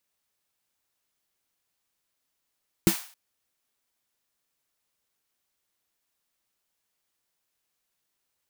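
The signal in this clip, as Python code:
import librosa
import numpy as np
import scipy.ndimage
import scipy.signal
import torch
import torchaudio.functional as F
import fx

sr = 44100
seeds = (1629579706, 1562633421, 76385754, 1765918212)

y = fx.drum_snare(sr, seeds[0], length_s=0.27, hz=190.0, second_hz=330.0, noise_db=-9.5, noise_from_hz=700.0, decay_s=0.1, noise_decay_s=0.45)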